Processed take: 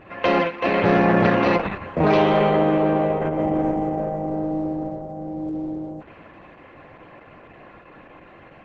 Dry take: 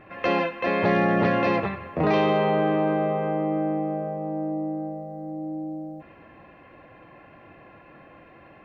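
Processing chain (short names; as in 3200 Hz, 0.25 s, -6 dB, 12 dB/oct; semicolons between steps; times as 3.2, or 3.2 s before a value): gain +4.5 dB; Opus 10 kbps 48000 Hz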